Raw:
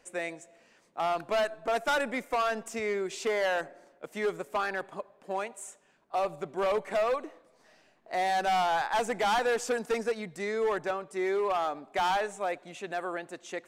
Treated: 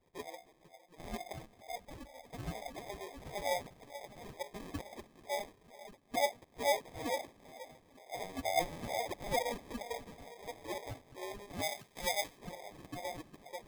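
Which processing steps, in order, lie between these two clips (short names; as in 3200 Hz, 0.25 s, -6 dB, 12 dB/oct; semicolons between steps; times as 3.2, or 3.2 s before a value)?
air absorption 50 m; notches 50/100/150/200/250/300/350/400/450 Hz; multi-head echo 0.248 s, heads second and third, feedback 47%, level -17 dB; 1.32–2.25 expander -21 dBFS; reverb RT60 2.3 s, pre-delay 5 ms, DRR 12 dB; wah 2.2 Hz 560–3100 Hz, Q 6.1; sample-and-hold 31×; 11.62–12.38 tilt shelf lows -5.5 dB, about 1400 Hz; gain +1 dB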